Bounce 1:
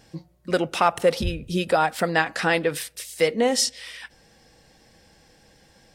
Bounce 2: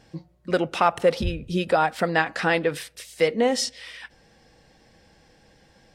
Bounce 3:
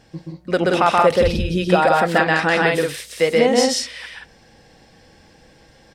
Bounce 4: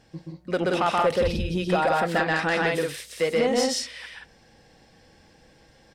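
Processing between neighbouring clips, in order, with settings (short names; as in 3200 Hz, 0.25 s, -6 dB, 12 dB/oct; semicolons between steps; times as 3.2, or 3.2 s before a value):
high shelf 6800 Hz -11 dB
loudspeakers at several distances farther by 44 m -1 dB, 61 m -3 dB; gain +3 dB
soft clip -8 dBFS, distortion -18 dB; gain -5.5 dB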